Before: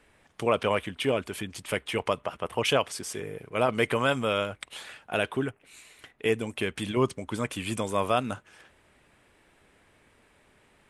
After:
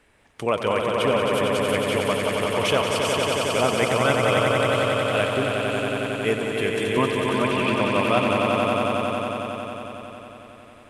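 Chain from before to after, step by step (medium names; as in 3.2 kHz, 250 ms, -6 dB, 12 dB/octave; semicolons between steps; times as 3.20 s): 6.97–7.94 s: cabinet simulation 130–4800 Hz, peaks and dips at 230 Hz +6 dB, 400 Hz -6 dB, 640 Hz +8 dB, 930 Hz +5 dB, 1.4 kHz +5 dB, 2.6 kHz +9 dB; on a send: echo with a slow build-up 91 ms, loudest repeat 5, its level -5 dB; on the sum: trim +1.5 dB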